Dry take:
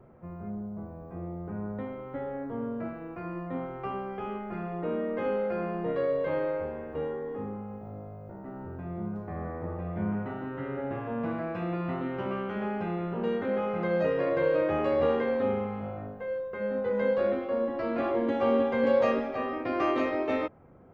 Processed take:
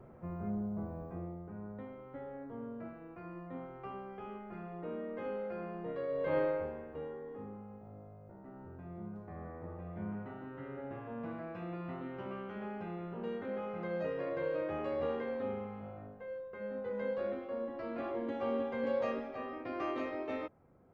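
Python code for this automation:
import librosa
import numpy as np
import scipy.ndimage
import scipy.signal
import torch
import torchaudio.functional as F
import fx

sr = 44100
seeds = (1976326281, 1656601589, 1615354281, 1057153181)

y = fx.gain(x, sr, db=fx.line((1.01, 0.0), (1.49, -10.0), (6.07, -10.0), (6.38, -1.0), (7.0, -10.0)))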